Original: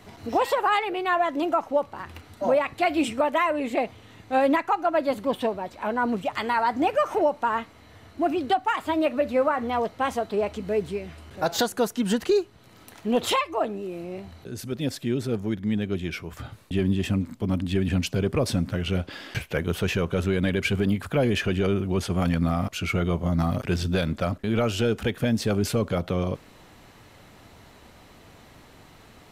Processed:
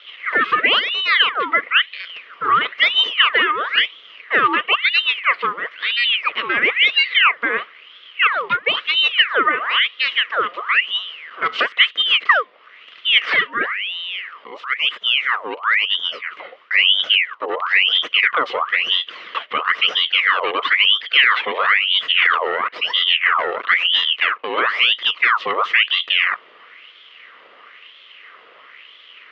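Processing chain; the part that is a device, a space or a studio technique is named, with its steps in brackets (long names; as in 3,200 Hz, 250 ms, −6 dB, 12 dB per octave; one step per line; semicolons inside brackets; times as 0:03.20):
voice changer toy (ring modulator whose carrier an LFO sweeps 2,000 Hz, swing 70%, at 1 Hz; loudspeaker in its box 400–3,500 Hz, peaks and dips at 460 Hz +6 dB, 820 Hz −10 dB, 1,200 Hz +9 dB, 2,000 Hz +9 dB, 3,000 Hz +9 dB)
level +4.5 dB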